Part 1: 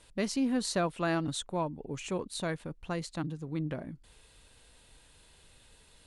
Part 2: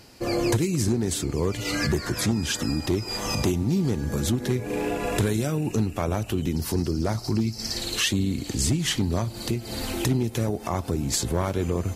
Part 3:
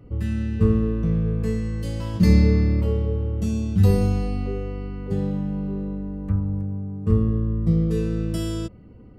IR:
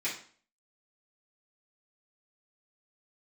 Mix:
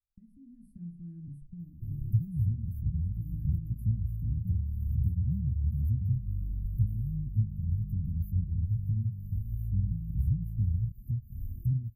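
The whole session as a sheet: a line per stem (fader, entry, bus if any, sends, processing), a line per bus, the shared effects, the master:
+3.0 dB, 0.00 s, bus A, send −14.5 dB, noise gate −47 dBFS, range −34 dB
−9.0 dB, 1.60 s, no bus, no send, reverb reduction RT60 0.73 s
−12.0 dB, 2.25 s, bus A, no send, no processing
bus A: 0.0 dB, reverb reduction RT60 0.52 s; downward compressor 6 to 1, threshold −38 dBFS, peak gain reduction 14.5 dB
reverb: on, RT60 0.45 s, pre-delay 3 ms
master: inverse Chebyshev band-stop filter 440–7,200 Hz, stop band 60 dB; high-shelf EQ 4,300 Hz −9.5 dB; automatic gain control gain up to 10 dB

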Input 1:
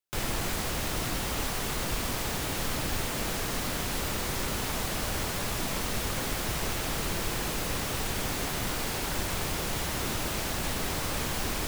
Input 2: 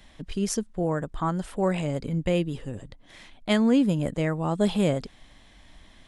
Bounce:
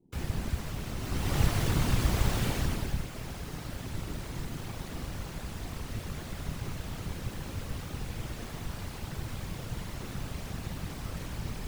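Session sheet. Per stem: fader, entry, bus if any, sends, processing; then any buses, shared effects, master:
0:00.96 −10 dB → 0:01.39 −1 dB → 0:02.47 −1 dB → 0:03.06 −11.5 dB, 0.00 s, no send, high-shelf EQ 6,300 Hz −5 dB
−4.5 dB, 0.00 s, no send, formant filter u; compressor whose output falls as the input rises −47 dBFS, ratio −1; elliptic band-stop filter 580–8,700 Hz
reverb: not used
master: low-shelf EQ 150 Hz +11.5 dB; random phases in short frames

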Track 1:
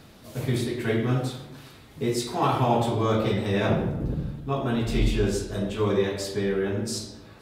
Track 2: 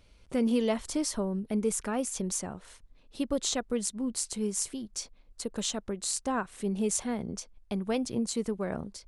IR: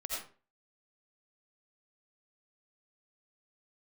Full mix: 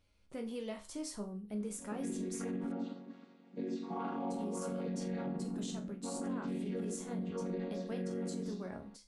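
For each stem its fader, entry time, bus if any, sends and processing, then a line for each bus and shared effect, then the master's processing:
+2.5 dB, 1.55 s, no send, channel vocoder with a chord as carrier major triad, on F#3; low-pass filter 4,000 Hz 6 dB per octave; automatic ducking −11 dB, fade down 1.40 s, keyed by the second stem
−1.0 dB, 0.00 s, muted 0:02.72–0:04.30, no send, resonators tuned to a chord C#2 sus4, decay 0.29 s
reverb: not used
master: brickwall limiter −30.5 dBFS, peak gain reduction 10 dB

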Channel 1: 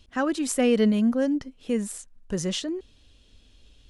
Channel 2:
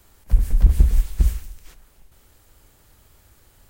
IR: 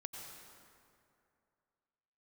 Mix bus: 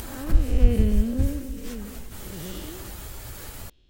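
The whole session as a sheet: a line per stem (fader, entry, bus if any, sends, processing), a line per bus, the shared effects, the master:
−5.5 dB, 0.00 s, send −7.5 dB, spectrum smeared in time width 306 ms; low-pass filter 4,800 Hz
−4.5 dB, 0.00 s, no send, random phases in long frames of 50 ms; upward compression, threshold −15 dBFS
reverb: on, RT60 2.5 s, pre-delay 83 ms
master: no processing

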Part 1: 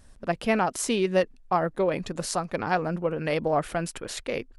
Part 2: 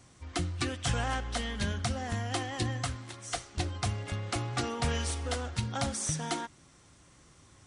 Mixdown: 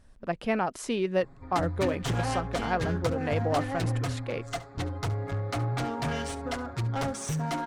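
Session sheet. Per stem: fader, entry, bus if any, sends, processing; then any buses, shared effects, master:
−3.5 dB, 0.00 s, no send, no echo send, no processing
−10.5 dB, 1.20 s, no send, echo send −18 dB, adaptive Wiener filter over 15 samples; comb filter 7.3 ms, depth 93%; sine wavefolder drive 10 dB, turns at −14.5 dBFS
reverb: not used
echo: single-tap delay 70 ms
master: high-shelf EQ 5,000 Hz −9.5 dB

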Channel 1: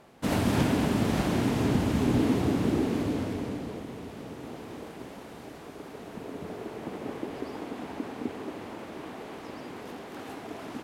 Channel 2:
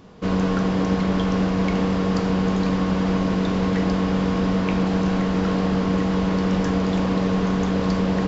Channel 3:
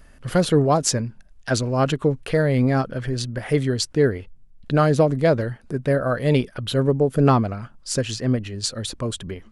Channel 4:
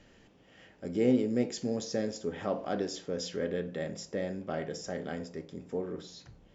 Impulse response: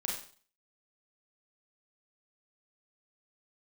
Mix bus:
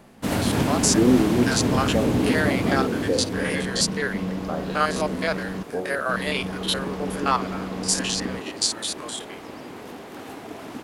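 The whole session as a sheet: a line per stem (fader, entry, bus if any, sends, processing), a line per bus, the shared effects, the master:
+2.5 dB, 0.00 s, no send, no processing
−11.0 dB, 0.55 s, no send, gate pattern "xxxxxxxxxx.." 65 BPM
−5.5 dB, 0.00 s, no send, spectrum averaged block by block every 50 ms; high-pass filter 1,200 Hz 12 dB per octave; automatic gain control gain up to 12.5 dB
+1.5 dB, 0.00 s, no send, low-pass on a step sequencer 2.1 Hz 220–3,700 Hz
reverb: not used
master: high-shelf EQ 7,100 Hz +4 dB

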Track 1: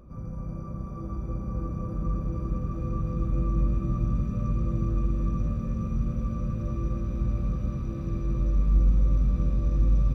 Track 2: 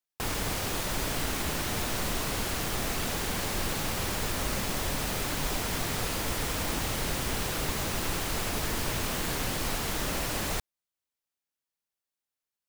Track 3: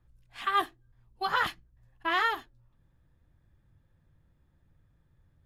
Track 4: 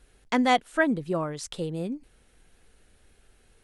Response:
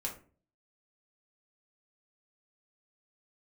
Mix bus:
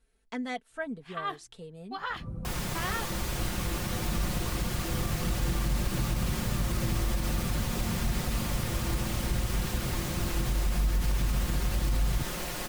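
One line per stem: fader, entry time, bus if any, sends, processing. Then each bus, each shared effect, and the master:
−0.5 dB, 2.10 s, no send, low-pass filter 1,400 Hz; reverb reduction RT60 0.65 s
−5.0 dB, 2.25 s, no send, comb filter 5.6 ms, depth 53%
−7.5 dB, 0.70 s, no send, parametric band 12,000 Hz −12.5 dB 0.77 octaves
−14.5 dB, 0.00 s, no send, comb filter 4.5 ms, depth 68%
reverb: not used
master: brickwall limiter −19.5 dBFS, peak gain reduction 7.5 dB

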